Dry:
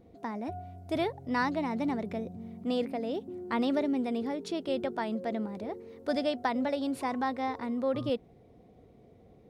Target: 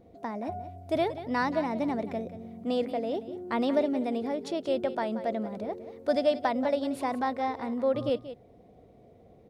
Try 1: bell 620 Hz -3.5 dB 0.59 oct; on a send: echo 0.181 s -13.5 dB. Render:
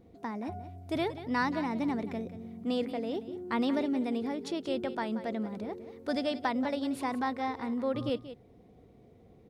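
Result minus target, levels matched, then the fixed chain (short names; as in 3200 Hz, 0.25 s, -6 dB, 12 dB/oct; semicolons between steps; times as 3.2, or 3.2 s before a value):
500 Hz band -3.5 dB
bell 620 Hz +6 dB 0.59 oct; on a send: echo 0.181 s -13.5 dB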